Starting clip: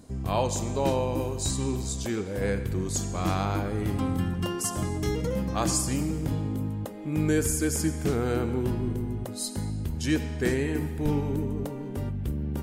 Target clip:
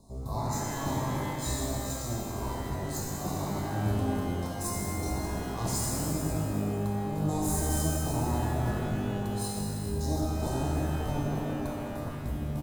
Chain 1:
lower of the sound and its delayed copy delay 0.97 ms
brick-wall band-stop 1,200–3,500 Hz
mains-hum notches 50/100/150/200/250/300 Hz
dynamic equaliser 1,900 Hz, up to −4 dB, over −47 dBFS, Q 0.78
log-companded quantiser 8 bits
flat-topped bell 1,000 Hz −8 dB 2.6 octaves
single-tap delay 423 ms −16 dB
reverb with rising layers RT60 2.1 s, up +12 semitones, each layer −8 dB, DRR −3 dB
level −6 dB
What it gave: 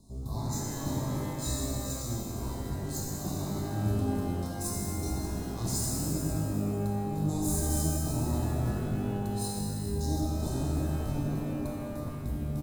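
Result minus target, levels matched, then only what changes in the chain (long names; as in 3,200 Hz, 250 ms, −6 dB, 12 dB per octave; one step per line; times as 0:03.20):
1,000 Hz band −4.5 dB
remove: flat-topped bell 1,000 Hz −8 dB 2.6 octaves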